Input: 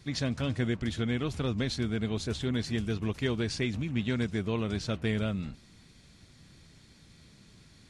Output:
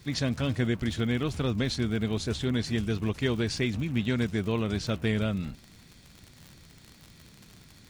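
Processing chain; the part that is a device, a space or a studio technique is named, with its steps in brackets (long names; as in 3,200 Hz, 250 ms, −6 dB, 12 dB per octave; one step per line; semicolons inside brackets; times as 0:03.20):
vinyl LP (surface crackle 63 per second −39 dBFS; white noise bed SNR 42 dB)
level +2.5 dB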